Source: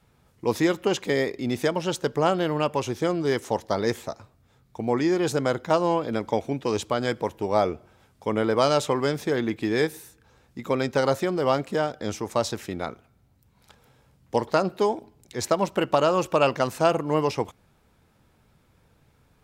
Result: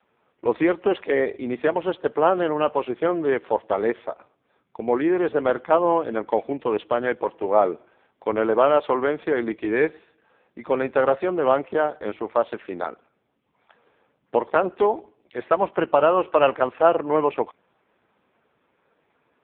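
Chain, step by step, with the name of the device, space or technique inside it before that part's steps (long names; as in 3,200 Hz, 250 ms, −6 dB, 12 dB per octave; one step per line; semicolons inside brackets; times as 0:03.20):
telephone (band-pass filter 330–3,100 Hz; level +5 dB; AMR narrowband 5.15 kbit/s 8,000 Hz)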